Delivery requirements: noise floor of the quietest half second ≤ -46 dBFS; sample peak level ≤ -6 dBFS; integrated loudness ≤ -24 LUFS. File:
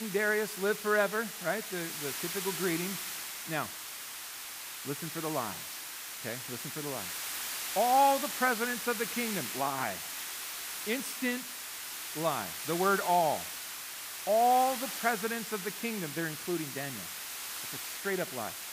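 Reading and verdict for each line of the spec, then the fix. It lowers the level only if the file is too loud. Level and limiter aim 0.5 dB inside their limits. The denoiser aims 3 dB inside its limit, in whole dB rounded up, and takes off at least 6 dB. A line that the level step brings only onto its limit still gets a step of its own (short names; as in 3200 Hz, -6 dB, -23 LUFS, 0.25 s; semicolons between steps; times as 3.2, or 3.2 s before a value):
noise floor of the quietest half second -43 dBFS: fail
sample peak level -14.0 dBFS: OK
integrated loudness -32.5 LUFS: OK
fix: denoiser 6 dB, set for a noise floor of -43 dBFS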